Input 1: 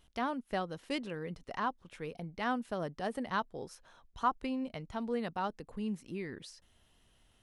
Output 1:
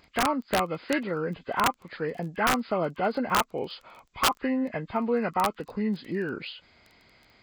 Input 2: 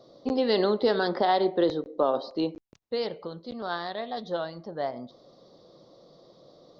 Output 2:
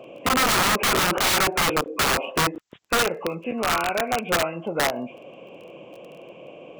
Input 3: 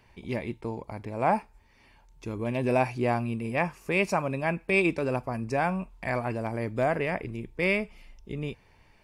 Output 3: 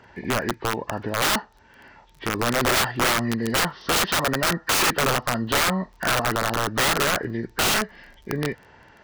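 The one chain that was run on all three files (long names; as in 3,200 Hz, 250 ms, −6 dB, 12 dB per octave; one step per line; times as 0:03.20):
hearing-aid frequency compression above 1,000 Hz 1.5 to 1
high-pass filter 210 Hz 6 dB per octave
in parallel at +0.5 dB: downward compressor 10 to 1, threshold −38 dBFS
on the sum: wrap-around overflow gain 22.5 dB
surface crackle 14 per second −45 dBFS
dynamic equaliser 1,300 Hz, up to +5 dB, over −48 dBFS, Q 3.4
level +6.5 dB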